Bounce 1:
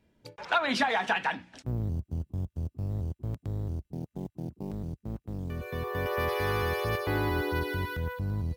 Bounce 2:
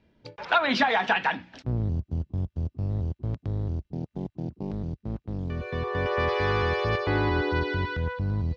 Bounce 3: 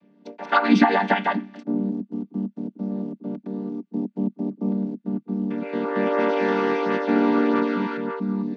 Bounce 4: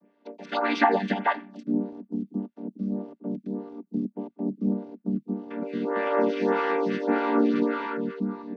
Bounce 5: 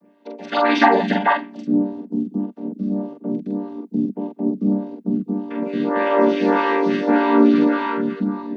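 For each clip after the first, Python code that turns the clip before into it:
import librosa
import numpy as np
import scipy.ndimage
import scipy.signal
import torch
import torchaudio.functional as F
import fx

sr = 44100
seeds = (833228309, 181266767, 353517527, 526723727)

y1 = scipy.signal.sosfilt(scipy.signal.butter(4, 5200.0, 'lowpass', fs=sr, output='sos'), x)
y1 = F.gain(torch.from_numpy(y1), 4.0).numpy()
y2 = fx.chord_vocoder(y1, sr, chord='minor triad', root=55)
y2 = F.gain(torch.from_numpy(y2), 6.0).numpy()
y3 = fx.stagger_phaser(y2, sr, hz=1.7)
y4 = fx.doubler(y3, sr, ms=44.0, db=-3)
y4 = F.gain(torch.from_numpy(y4), 6.0).numpy()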